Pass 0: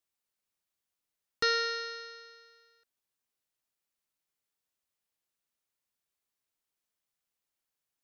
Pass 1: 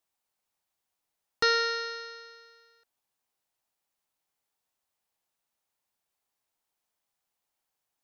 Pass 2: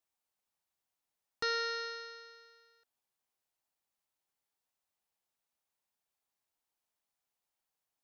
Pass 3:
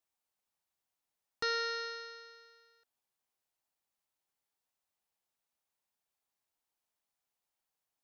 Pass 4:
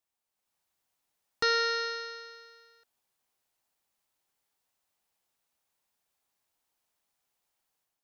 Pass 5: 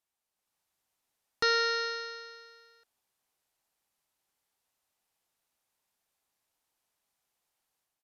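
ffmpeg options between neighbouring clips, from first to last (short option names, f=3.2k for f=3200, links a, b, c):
-af "equalizer=f=810:t=o:w=0.77:g=8,volume=2.5dB"
-af "alimiter=limit=-16.5dB:level=0:latency=1:release=411,volume=-5dB"
-af anull
-af "dynaudnorm=f=300:g=3:m=7dB"
-af "aresample=32000,aresample=44100"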